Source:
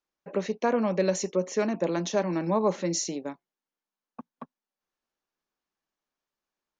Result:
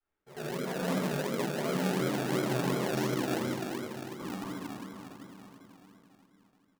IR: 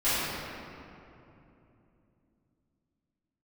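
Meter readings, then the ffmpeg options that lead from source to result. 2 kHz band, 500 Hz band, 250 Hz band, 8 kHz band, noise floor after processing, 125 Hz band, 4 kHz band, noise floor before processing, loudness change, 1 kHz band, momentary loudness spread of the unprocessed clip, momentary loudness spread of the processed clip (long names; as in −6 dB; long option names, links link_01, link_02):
+2.0 dB, −6.0 dB, −2.0 dB, −7.5 dB, −71 dBFS, +1.5 dB, 0.0 dB, below −85 dBFS, −5.0 dB, −3.0 dB, 8 LU, 16 LU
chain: -filter_complex "[0:a]lowpass=1900,equalizer=frequency=1000:width=4.7:gain=-5,areverse,acompressor=threshold=-39dB:ratio=6,areverse,aeval=exprs='val(0)*sin(2*PI*40*n/s)':channel_layout=same,aecho=1:1:495|990|1485|1980|2475:0.376|0.154|0.0632|0.0259|0.0106[link_01];[1:a]atrim=start_sample=2205,asetrate=57330,aresample=44100[link_02];[link_01][link_02]afir=irnorm=-1:irlink=0,acrossover=split=670|770[link_03][link_04][link_05];[link_03]acrusher=samples=34:mix=1:aa=0.000001:lfo=1:lforange=20.4:lforate=2.8[link_06];[link_06][link_04][link_05]amix=inputs=3:normalize=0"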